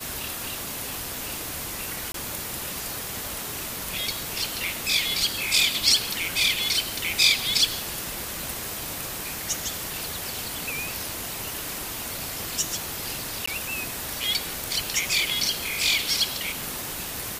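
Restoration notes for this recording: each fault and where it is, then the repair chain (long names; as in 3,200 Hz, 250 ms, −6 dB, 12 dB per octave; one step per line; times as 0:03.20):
0:02.12–0:02.14: drop-out 23 ms
0:13.46–0:13.47: drop-out 15 ms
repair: repair the gap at 0:02.12, 23 ms
repair the gap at 0:13.46, 15 ms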